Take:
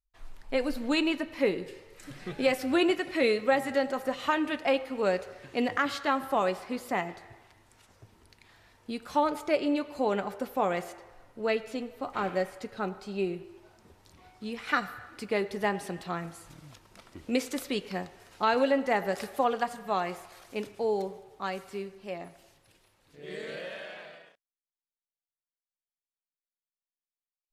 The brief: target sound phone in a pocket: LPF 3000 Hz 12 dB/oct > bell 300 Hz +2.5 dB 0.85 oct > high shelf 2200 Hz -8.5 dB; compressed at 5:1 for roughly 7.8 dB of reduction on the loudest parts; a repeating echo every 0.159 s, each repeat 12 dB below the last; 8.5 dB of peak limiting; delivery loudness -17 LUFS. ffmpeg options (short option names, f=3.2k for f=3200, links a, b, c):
-af "acompressor=threshold=-29dB:ratio=5,alimiter=level_in=1dB:limit=-24dB:level=0:latency=1,volume=-1dB,lowpass=3k,equalizer=f=300:t=o:w=0.85:g=2.5,highshelf=f=2.2k:g=-8.5,aecho=1:1:159|318|477:0.251|0.0628|0.0157,volume=20dB"